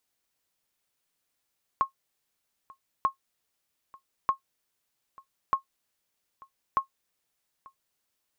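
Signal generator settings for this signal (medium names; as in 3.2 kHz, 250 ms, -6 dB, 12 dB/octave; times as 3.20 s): sonar ping 1.08 kHz, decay 0.11 s, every 1.24 s, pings 5, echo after 0.89 s, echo -25 dB -14.5 dBFS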